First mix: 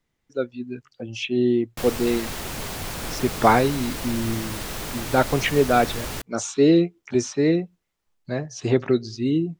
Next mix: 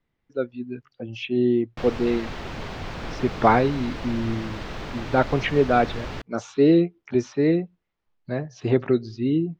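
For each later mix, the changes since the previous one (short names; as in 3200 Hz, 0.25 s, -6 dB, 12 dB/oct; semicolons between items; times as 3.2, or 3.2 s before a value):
master: add air absorption 210 m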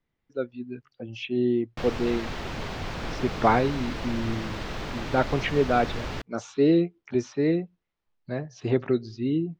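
speech -3.5 dB; master: add high shelf 5700 Hz +4.5 dB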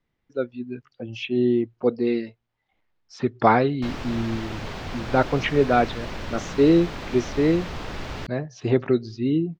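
speech +3.5 dB; background: entry +2.05 s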